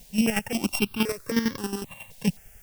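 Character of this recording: a buzz of ramps at a fixed pitch in blocks of 16 samples; chopped level 11 Hz, depth 65%, duty 30%; a quantiser's noise floor 10-bit, dither triangular; notches that jump at a steady rate 3.8 Hz 340–2600 Hz

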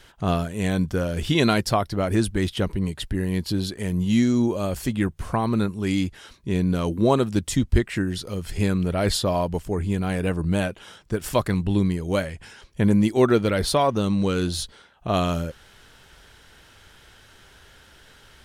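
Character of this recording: noise floor -53 dBFS; spectral tilt -6.0 dB/octave

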